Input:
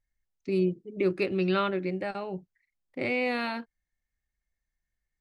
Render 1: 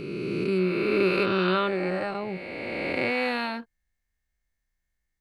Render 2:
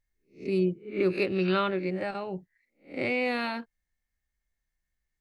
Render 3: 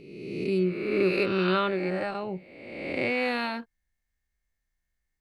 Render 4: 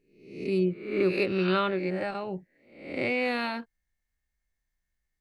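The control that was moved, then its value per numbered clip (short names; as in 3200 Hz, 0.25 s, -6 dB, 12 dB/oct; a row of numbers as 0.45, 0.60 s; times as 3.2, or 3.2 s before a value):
spectral swells, rising 60 dB in: 2.95, 0.31, 1.35, 0.64 s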